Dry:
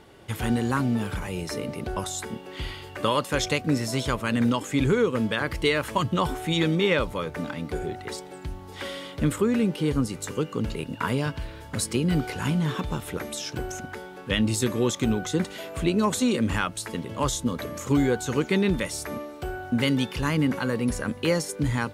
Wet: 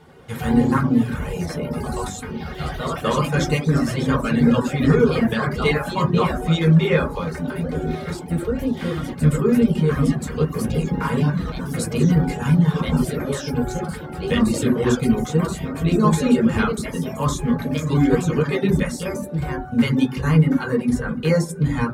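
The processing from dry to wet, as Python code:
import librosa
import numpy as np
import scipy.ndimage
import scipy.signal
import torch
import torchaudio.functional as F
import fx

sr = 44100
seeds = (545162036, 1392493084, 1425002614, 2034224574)

y = fx.echo_pitch(x, sr, ms=84, semitones=2, count=3, db_per_echo=-6.0)
y = fx.rev_fdn(y, sr, rt60_s=0.59, lf_ratio=1.55, hf_ratio=0.3, size_ms=38.0, drr_db=-4.5)
y = fx.dereverb_blind(y, sr, rt60_s=0.52)
y = F.gain(torch.from_numpy(y), -3.0).numpy()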